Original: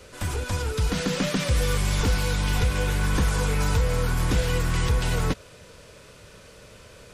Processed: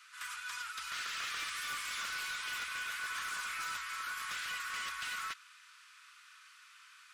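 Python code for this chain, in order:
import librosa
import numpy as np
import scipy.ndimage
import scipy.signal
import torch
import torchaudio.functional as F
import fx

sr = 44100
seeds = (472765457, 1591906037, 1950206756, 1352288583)

y = scipy.signal.sosfilt(scipy.signal.ellip(4, 1.0, 50, 1200.0, 'highpass', fs=sr, output='sos'), x)
y = fx.high_shelf(y, sr, hz=2300.0, db=-9.5)
y = np.clip(10.0 ** (35.0 / 20.0) * y, -1.0, 1.0) / 10.0 ** (35.0 / 20.0)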